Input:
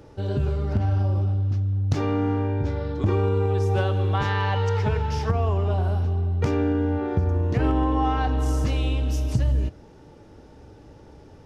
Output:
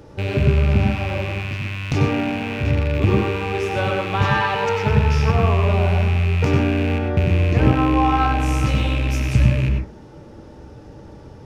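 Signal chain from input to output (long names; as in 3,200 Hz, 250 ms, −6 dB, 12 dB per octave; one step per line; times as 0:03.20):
loose part that buzzes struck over −27 dBFS, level −23 dBFS
on a send: convolution reverb RT60 0.40 s, pre-delay 87 ms, DRR 2 dB
on the sum: level +4 dB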